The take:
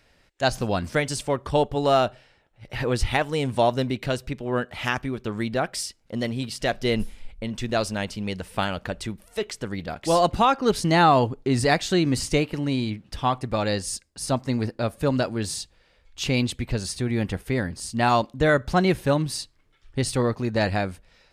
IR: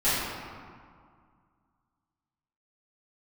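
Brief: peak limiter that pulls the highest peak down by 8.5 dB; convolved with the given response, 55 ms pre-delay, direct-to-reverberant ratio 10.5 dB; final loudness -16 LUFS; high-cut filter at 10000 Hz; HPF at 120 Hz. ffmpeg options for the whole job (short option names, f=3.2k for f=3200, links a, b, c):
-filter_complex "[0:a]highpass=120,lowpass=10k,alimiter=limit=-15dB:level=0:latency=1,asplit=2[a][b];[1:a]atrim=start_sample=2205,adelay=55[c];[b][c]afir=irnorm=-1:irlink=0,volume=-25dB[d];[a][d]amix=inputs=2:normalize=0,volume=11.5dB"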